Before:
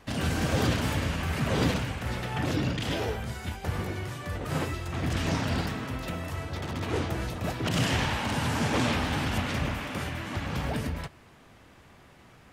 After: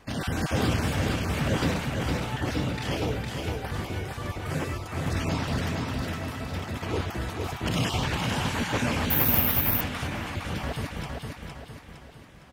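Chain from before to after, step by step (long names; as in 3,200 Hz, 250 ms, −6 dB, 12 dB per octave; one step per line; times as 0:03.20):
time-frequency cells dropped at random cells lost 22%
repeating echo 460 ms, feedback 46%, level −4 dB
0:09.10–0:09.81: bad sample-rate conversion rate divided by 3×, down filtered, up zero stuff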